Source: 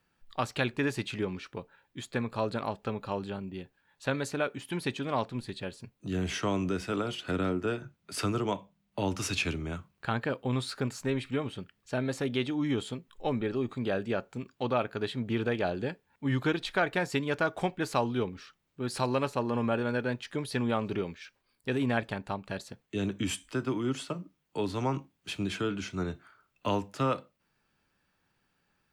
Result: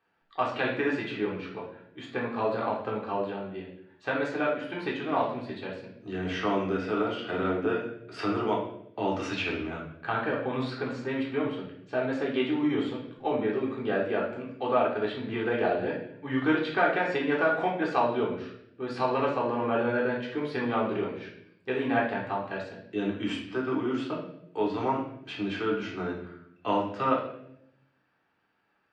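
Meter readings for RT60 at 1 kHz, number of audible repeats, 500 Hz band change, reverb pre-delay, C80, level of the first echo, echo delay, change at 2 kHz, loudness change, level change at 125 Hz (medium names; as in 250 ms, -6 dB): 0.60 s, no echo, +4.0 dB, 3 ms, 9.0 dB, no echo, no echo, +3.5 dB, +3.0 dB, -4.5 dB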